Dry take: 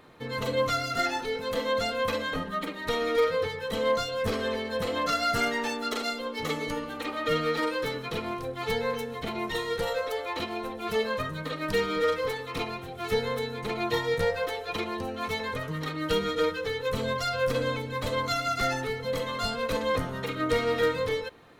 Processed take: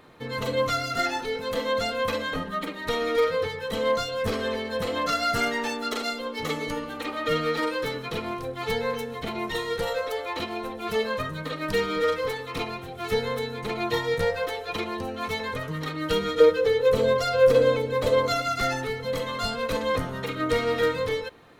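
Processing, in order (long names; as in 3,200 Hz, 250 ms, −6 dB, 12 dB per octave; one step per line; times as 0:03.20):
0:16.40–0:18.42: parametric band 480 Hz +10 dB 0.8 octaves
level +1.5 dB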